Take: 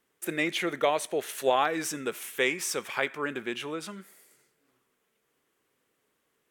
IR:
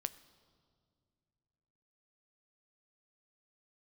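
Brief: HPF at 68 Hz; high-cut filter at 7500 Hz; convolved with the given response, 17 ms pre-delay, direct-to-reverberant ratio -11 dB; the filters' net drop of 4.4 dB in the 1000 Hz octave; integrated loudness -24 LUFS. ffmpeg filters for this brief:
-filter_complex "[0:a]highpass=68,lowpass=7.5k,equalizer=f=1k:t=o:g=-6,asplit=2[a][b];[1:a]atrim=start_sample=2205,adelay=17[c];[b][c]afir=irnorm=-1:irlink=0,volume=12dB[d];[a][d]amix=inputs=2:normalize=0,volume=-4dB"

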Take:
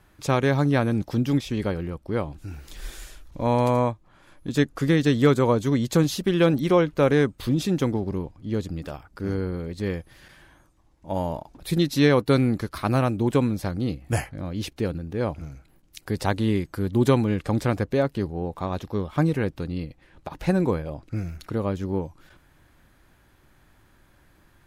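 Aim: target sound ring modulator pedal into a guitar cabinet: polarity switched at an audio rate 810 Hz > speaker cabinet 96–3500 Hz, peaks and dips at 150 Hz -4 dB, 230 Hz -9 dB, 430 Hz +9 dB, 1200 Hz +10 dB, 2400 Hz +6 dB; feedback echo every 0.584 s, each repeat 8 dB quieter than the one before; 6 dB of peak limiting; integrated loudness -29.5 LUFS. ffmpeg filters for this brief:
-af "alimiter=limit=-12.5dB:level=0:latency=1,aecho=1:1:584|1168|1752|2336|2920:0.398|0.159|0.0637|0.0255|0.0102,aeval=exprs='val(0)*sgn(sin(2*PI*810*n/s))':c=same,highpass=96,equalizer=f=150:t=q:w=4:g=-4,equalizer=f=230:t=q:w=4:g=-9,equalizer=f=430:t=q:w=4:g=9,equalizer=f=1.2k:t=q:w=4:g=10,equalizer=f=2.4k:t=q:w=4:g=6,lowpass=f=3.5k:w=0.5412,lowpass=f=3.5k:w=1.3066,volume=-9dB"

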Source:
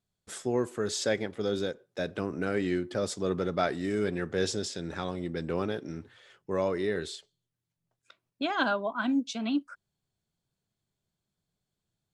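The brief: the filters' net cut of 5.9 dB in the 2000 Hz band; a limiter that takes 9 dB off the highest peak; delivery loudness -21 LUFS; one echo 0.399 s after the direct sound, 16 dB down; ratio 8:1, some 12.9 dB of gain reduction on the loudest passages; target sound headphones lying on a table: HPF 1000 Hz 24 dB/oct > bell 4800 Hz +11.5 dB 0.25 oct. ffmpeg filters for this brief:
-af "equalizer=f=2k:t=o:g=-8.5,acompressor=threshold=-38dB:ratio=8,alimiter=level_in=12dB:limit=-24dB:level=0:latency=1,volume=-12dB,highpass=f=1k:w=0.5412,highpass=f=1k:w=1.3066,equalizer=f=4.8k:t=o:w=0.25:g=11.5,aecho=1:1:399:0.158,volume=28dB"

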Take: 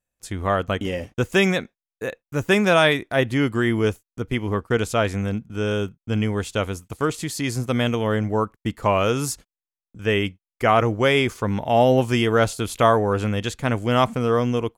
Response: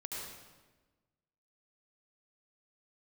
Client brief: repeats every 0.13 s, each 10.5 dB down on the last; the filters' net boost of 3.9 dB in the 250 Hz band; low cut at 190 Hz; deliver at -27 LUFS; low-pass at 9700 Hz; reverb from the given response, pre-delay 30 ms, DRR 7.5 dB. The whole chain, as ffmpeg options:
-filter_complex "[0:a]highpass=190,lowpass=9.7k,equalizer=f=250:t=o:g=6.5,aecho=1:1:130|260|390:0.299|0.0896|0.0269,asplit=2[a][b];[1:a]atrim=start_sample=2205,adelay=30[c];[b][c]afir=irnorm=-1:irlink=0,volume=-7.5dB[d];[a][d]amix=inputs=2:normalize=0,volume=-7.5dB"

